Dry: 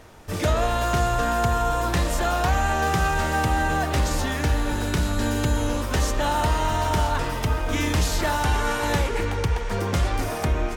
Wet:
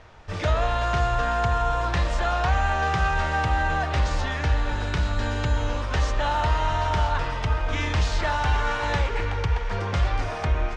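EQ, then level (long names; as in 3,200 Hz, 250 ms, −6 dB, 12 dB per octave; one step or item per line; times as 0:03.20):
low-pass filter 10,000 Hz 12 dB per octave
high-frequency loss of the air 140 metres
parametric band 270 Hz −10 dB 1.7 octaves
+1.5 dB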